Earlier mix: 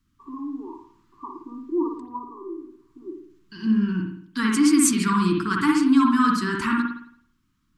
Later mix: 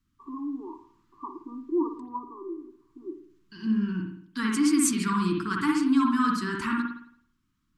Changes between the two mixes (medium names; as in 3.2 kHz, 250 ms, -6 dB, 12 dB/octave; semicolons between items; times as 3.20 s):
first voice: send -6.0 dB; second voice -5.0 dB